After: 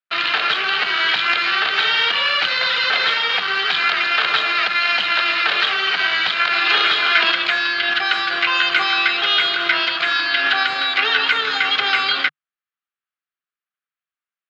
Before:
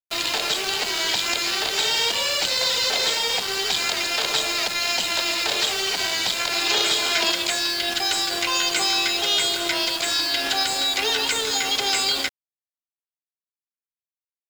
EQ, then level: distance through air 190 m; cabinet simulation 130–6300 Hz, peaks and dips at 150 Hz +5 dB, 760 Hz +4 dB, 1.2 kHz +7 dB, 1.6 kHz +4 dB, 4.2 kHz +7 dB; high-order bell 2 kHz +11.5 dB; -2.0 dB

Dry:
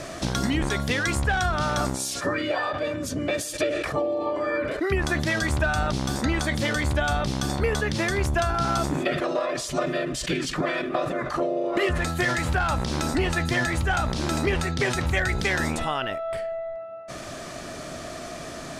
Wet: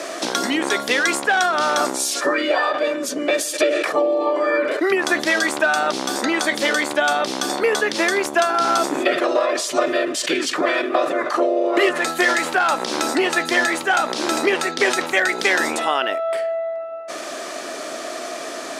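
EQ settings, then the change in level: high-pass 300 Hz 24 dB/octave; +7.5 dB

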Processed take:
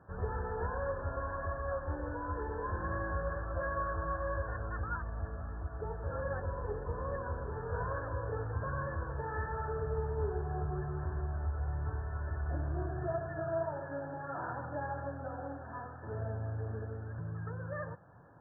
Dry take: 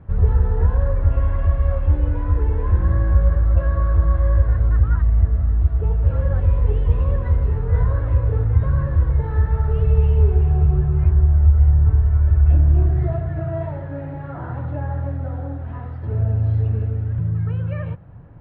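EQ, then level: high-pass 1 kHz 6 dB/octave; brick-wall FIR low-pass 1.8 kHz; 0.0 dB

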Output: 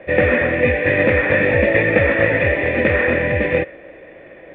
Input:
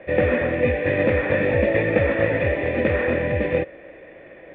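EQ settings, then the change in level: dynamic bell 2 kHz, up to +6 dB, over -39 dBFS, Q 1.1; +3.0 dB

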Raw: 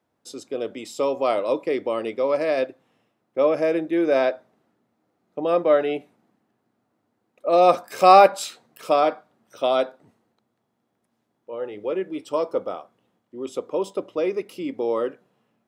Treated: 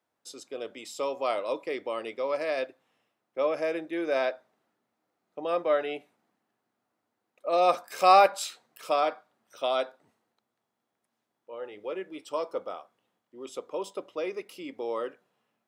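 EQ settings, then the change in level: bass shelf 460 Hz -12 dB; -3.0 dB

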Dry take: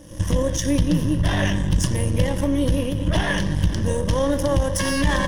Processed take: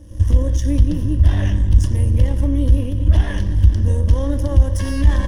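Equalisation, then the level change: resonant low shelf 110 Hz +13 dB, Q 3; peaking EQ 230 Hz +12.5 dB 1.4 oct; -8.5 dB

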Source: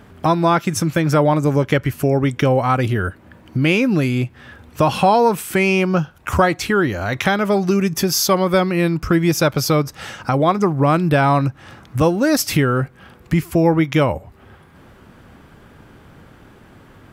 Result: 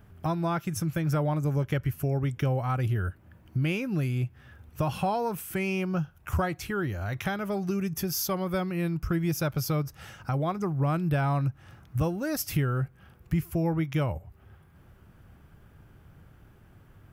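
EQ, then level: graphic EQ 250/500/1000/2000/4000/8000 Hz -10/-8/-8/-7/-10/-8 dB; -4.0 dB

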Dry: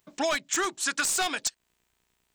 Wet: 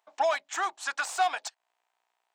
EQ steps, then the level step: resonant high-pass 770 Hz, resonance Q 3.5; treble shelf 4.5 kHz -7.5 dB; treble shelf 9.6 kHz -7 dB; -3.5 dB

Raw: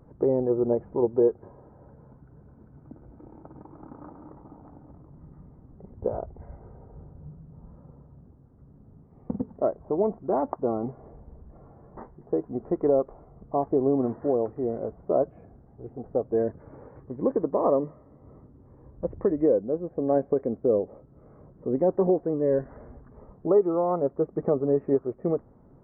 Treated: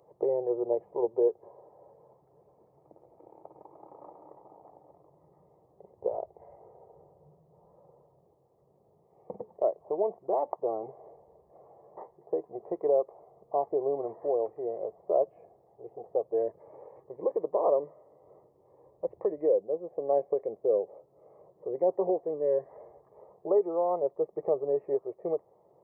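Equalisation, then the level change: high-pass 340 Hz 12 dB/octave; dynamic bell 620 Hz, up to -3 dB, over -34 dBFS, Q 0.73; static phaser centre 610 Hz, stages 4; +2.0 dB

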